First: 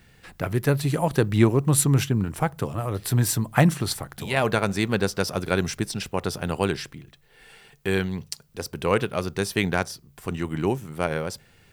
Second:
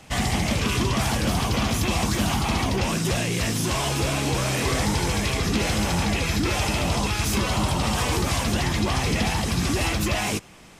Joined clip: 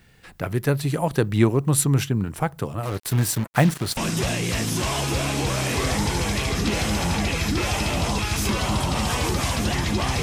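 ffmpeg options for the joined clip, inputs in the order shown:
-filter_complex "[0:a]asettb=1/sr,asplit=3[s0][s1][s2];[s0]atrim=end=2.834[s3];[s1]atrim=start=2.83:end=3.97,asetpts=PTS-STARTPTS,afade=t=in:d=0.004:c=qsin,afade=t=out:st=1.136:d=0.004:c=qsin,acrusher=bits=4:mix=0:aa=0.5[s4];[s2]atrim=start=3.966[s5];[s3][s4]acrossfade=d=0.004:c1=hsin:c2=qsin[s6];[s6][s5]acrossfade=d=0.004:c1=qsin:c2=hsin,apad=whole_dur=10.22,atrim=end=10.22,atrim=end=3.972[s7];[1:a]atrim=start=2.848:end=9.1[s8];[s7][s8]acrossfade=d=0.004:c1=hsin:c2=hsin"

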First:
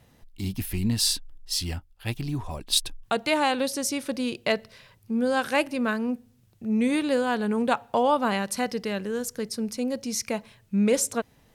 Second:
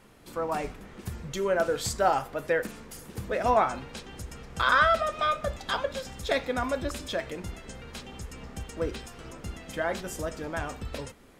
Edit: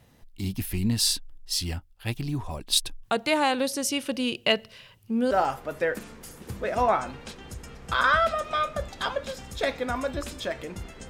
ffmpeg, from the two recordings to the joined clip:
-filter_complex "[0:a]asettb=1/sr,asplit=3[s0][s1][s2];[s0]atrim=end=3.824[s3];[s1]atrim=start=3.82:end=5.31,asetpts=PTS-STARTPTS,afade=t=in:d=0.004:c=qsin,afade=t=out:st=1.486:d=0.004:c=qsin,equalizer=f=2900:t=o:w=0.25:g=11[s4];[s2]atrim=start=5.306[s5];[s3][s4]acrossfade=d=0.004:c1=hsin:c2=qsin[s6];[s6][s5]acrossfade=d=0.004:c1=qsin:c2=hsin,apad=whole_dur=11.09,atrim=end=11.09,atrim=end=5.312[s7];[1:a]atrim=start=1.988:end=7.77[s8];[s7][s8]acrossfade=d=0.004:c1=hsin:c2=hsin"

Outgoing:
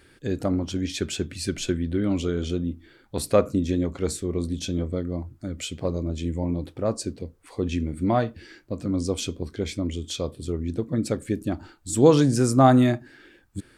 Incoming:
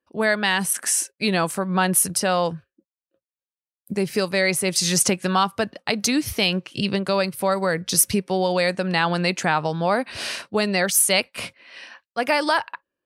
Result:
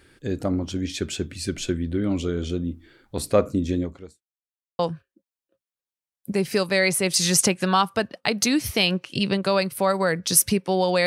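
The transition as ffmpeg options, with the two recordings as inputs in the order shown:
-filter_complex "[0:a]apad=whole_dur=11.06,atrim=end=11.06,asplit=2[s0][s1];[s0]atrim=end=4.23,asetpts=PTS-STARTPTS,afade=t=out:st=3.78:d=0.45:c=qua[s2];[s1]atrim=start=4.23:end=4.79,asetpts=PTS-STARTPTS,volume=0[s3];[1:a]atrim=start=2.41:end=8.68,asetpts=PTS-STARTPTS,afade=t=in:d=0.004:c=hsin[s4];[s2][s3][s4]concat=n=3:v=0:a=1"

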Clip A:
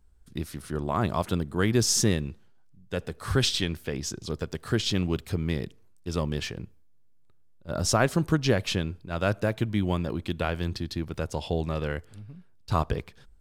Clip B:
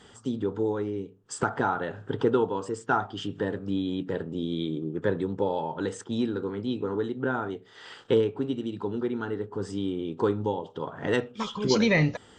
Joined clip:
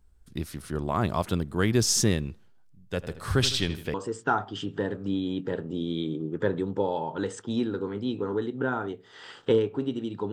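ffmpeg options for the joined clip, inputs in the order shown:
-filter_complex "[0:a]asplit=3[s0][s1][s2];[s0]afade=t=out:st=3.02:d=0.02[s3];[s1]asplit=2[s4][s5];[s5]adelay=79,lowpass=f=4400:p=1,volume=0.237,asplit=2[s6][s7];[s7]adelay=79,lowpass=f=4400:p=1,volume=0.51,asplit=2[s8][s9];[s9]adelay=79,lowpass=f=4400:p=1,volume=0.51,asplit=2[s10][s11];[s11]adelay=79,lowpass=f=4400:p=1,volume=0.51,asplit=2[s12][s13];[s13]adelay=79,lowpass=f=4400:p=1,volume=0.51[s14];[s4][s6][s8][s10][s12][s14]amix=inputs=6:normalize=0,afade=t=in:st=3.02:d=0.02,afade=t=out:st=3.94:d=0.02[s15];[s2]afade=t=in:st=3.94:d=0.02[s16];[s3][s15][s16]amix=inputs=3:normalize=0,apad=whole_dur=10.32,atrim=end=10.32,atrim=end=3.942[s17];[1:a]atrim=start=2.558:end=8.94[s18];[s17][s18]acrossfade=d=0.004:c1=hsin:c2=hsin"

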